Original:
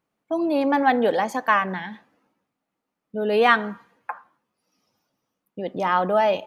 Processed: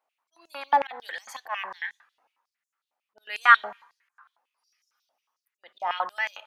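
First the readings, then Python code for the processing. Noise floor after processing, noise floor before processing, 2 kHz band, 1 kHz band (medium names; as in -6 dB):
under -85 dBFS, -82 dBFS, 0.0 dB, -3.5 dB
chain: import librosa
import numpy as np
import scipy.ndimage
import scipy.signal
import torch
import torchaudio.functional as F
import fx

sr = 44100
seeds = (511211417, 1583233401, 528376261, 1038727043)

y = fx.auto_swell(x, sr, attack_ms=182.0)
y = fx.filter_held_highpass(y, sr, hz=11.0, low_hz=720.0, high_hz=6800.0)
y = F.gain(torch.from_numpy(y), -4.5).numpy()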